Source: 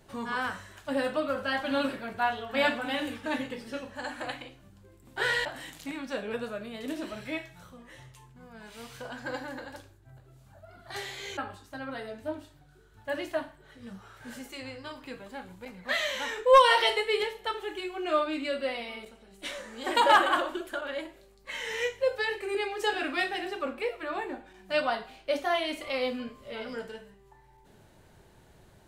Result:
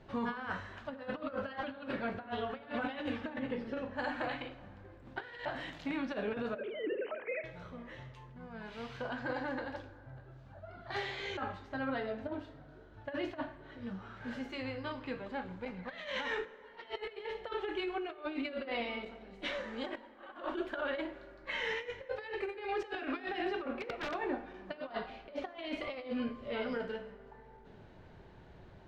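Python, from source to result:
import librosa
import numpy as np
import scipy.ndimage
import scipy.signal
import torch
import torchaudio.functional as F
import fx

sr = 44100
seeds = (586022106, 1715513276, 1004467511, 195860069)

y = fx.sine_speech(x, sr, at=(6.55, 7.44))
y = fx.over_compress(y, sr, threshold_db=-35.0, ratio=-0.5)
y = fx.high_shelf(y, sr, hz=2500.0, db=-8.5, at=(3.3, 3.98))
y = fx.overflow_wrap(y, sr, gain_db=26.5, at=(23.73, 24.13), fade=0.02)
y = fx.air_absorb(y, sr, metres=230.0)
y = fx.rev_plate(y, sr, seeds[0], rt60_s=3.1, hf_ratio=0.45, predelay_ms=0, drr_db=15.0)
y = y * 10.0 ** (-2.5 / 20.0)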